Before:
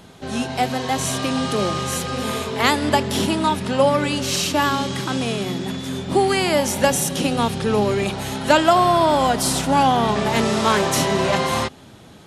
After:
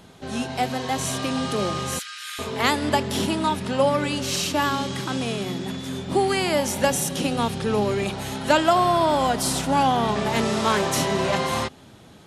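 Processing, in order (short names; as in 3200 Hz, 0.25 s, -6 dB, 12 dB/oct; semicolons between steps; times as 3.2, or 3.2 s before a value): 1.99–2.39 elliptic high-pass 1400 Hz, stop band 50 dB; gain -3.5 dB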